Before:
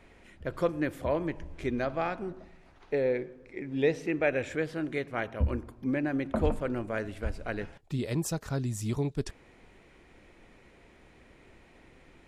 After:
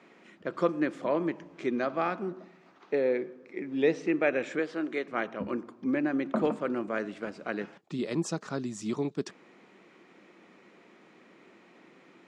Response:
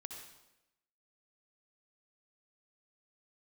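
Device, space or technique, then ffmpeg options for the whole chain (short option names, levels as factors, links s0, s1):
television speaker: -filter_complex "[0:a]asettb=1/sr,asplit=3[s0][s1][s2];[s0]atrim=end=4.594[s3];[s1]atrim=start=4.59:end=5.08,asetpts=PTS-STARTPTS,afade=t=in:d=0.004:c=qsin,afade=t=out:st=0.486:d=0.004:c=qsin,highpass=260[s4];[s2]atrim=start=5.076[s5];[s3][s4]acrossfade=d=0.004:c1=hsin:c2=qsin[s6];[s6][s5]acrossfade=d=0.004:c1=qsin:c2=hsin,highpass=f=180:w=0.5412,highpass=f=180:w=1.3066,equalizer=f=190:t=q:w=4:g=5,equalizer=f=340:t=q:w=4:g=4,equalizer=f=1200:t=q:w=4:g=6,lowpass=f=7400:w=0.5412,lowpass=f=7400:w=1.3066"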